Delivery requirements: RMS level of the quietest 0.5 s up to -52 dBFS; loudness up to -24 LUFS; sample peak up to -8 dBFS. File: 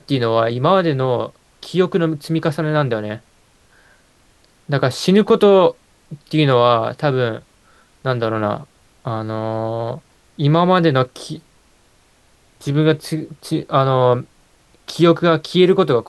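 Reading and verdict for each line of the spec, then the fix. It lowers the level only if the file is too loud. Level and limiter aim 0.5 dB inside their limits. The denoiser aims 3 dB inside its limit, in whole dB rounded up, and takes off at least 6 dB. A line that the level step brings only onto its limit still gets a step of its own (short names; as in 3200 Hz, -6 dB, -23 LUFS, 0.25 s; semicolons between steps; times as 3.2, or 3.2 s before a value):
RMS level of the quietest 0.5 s -55 dBFS: OK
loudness -17.0 LUFS: fail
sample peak -1.5 dBFS: fail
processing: gain -7.5 dB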